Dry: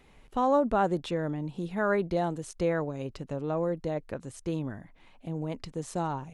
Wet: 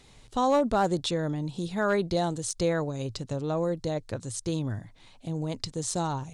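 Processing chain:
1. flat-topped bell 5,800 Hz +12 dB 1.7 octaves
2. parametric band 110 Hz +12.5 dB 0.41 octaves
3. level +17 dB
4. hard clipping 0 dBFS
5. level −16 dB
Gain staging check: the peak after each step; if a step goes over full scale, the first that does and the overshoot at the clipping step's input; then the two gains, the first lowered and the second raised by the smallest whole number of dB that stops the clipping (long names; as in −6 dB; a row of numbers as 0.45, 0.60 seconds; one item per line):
−13.5, −13.5, +3.5, 0.0, −16.0 dBFS
step 3, 3.5 dB
step 3 +13 dB, step 5 −12 dB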